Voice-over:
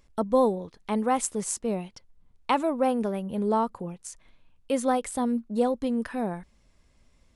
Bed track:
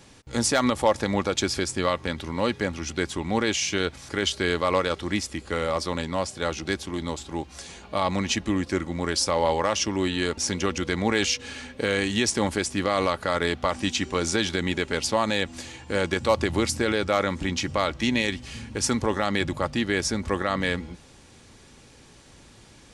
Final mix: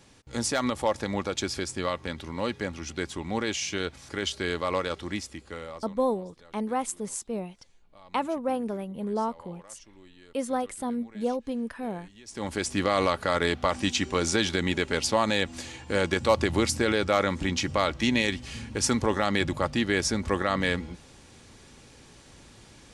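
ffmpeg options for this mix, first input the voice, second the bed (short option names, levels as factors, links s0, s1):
-filter_complex "[0:a]adelay=5650,volume=0.631[s0];[1:a]volume=13.3,afade=t=out:st=5.02:d=0.98:silence=0.0707946,afade=t=in:st=12.25:d=0.5:silence=0.0421697[s1];[s0][s1]amix=inputs=2:normalize=0"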